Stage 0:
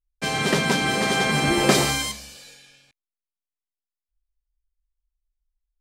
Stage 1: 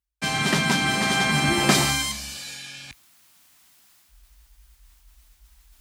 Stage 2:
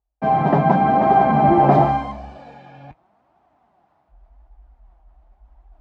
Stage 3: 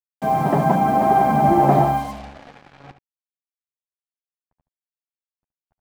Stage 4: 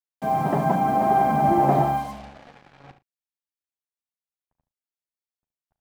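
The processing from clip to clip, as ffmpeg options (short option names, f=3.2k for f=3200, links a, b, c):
-af "highpass=f=50:w=0.5412,highpass=f=50:w=1.3066,equalizer=f=470:t=o:w=0.62:g=-12,areverse,acompressor=mode=upward:threshold=-28dB:ratio=2.5,areverse,volume=1dB"
-af "lowpass=f=740:t=q:w=3.7,flanger=delay=2.3:depth=4.9:regen=51:speed=0.88:shape=triangular,alimiter=level_in=10.5dB:limit=-1dB:release=50:level=0:latency=1,volume=-1dB"
-af "acrusher=bits=5:mix=0:aa=0.5,aecho=1:1:72:0.251,volume=-2dB"
-filter_complex "[0:a]asplit=2[a][b];[b]adelay=38,volume=-14dB[c];[a][c]amix=inputs=2:normalize=0,volume=-4.5dB"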